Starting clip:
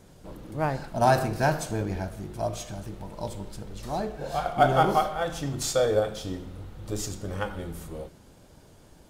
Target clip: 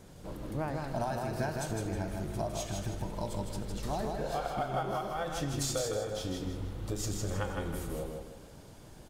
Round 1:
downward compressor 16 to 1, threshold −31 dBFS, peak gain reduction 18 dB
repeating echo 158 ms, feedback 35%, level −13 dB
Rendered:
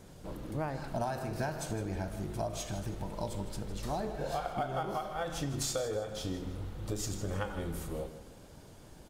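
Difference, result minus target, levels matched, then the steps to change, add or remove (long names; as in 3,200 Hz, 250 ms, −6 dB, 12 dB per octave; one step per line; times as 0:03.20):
echo-to-direct −9 dB
change: repeating echo 158 ms, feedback 35%, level −4 dB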